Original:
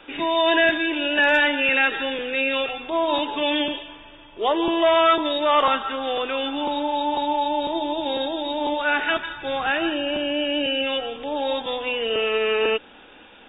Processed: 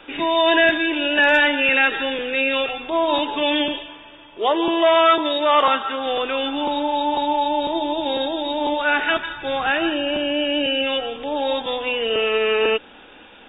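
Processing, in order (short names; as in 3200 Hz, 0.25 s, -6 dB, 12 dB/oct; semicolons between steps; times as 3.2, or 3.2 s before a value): 3.86–6.06 low shelf 93 Hz -11.5 dB; gain +2.5 dB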